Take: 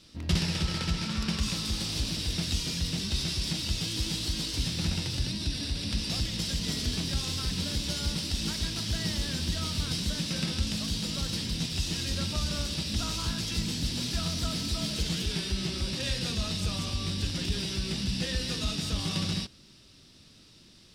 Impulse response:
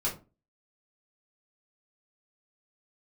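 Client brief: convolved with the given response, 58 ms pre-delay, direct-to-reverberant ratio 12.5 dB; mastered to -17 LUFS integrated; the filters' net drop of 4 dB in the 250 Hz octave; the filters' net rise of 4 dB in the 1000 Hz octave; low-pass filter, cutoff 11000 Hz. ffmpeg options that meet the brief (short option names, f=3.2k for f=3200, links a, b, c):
-filter_complex "[0:a]lowpass=11k,equalizer=f=250:t=o:g=-6.5,equalizer=f=1k:t=o:g=5.5,asplit=2[a][b];[1:a]atrim=start_sample=2205,adelay=58[c];[b][c]afir=irnorm=-1:irlink=0,volume=-18.5dB[d];[a][d]amix=inputs=2:normalize=0,volume=13.5dB"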